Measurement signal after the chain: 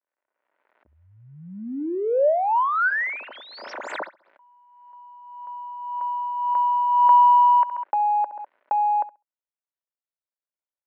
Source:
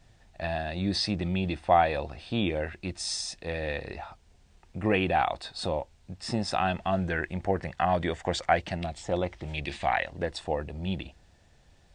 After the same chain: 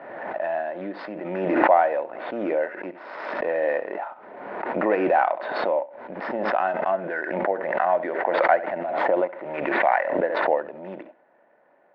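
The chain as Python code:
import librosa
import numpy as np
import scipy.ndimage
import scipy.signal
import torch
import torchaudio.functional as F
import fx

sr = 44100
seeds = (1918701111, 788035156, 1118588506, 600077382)

y = scipy.signal.medfilt(x, 15)
y = fx.peak_eq(y, sr, hz=1500.0, db=7.5, octaves=0.21)
y = fx.rider(y, sr, range_db=10, speed_s=2.0)
y = fx.cabinet(y, sr, low_hz=280.0, low_slope=24, high_hz=2500.0, hz=(590.0, 960.0, 1900.0), db=(10, 7, 4))
y = fx.notch(y, sr, hz=1600.0, q=25.0)
y = fx.room_flutter(y, sr, wall_m=11.5, rt60_s=0.23)
y = fx.pre_swell(y, sr, db_per_s=38.0)
y = y * librosa.db_to_amplitude(-1.0)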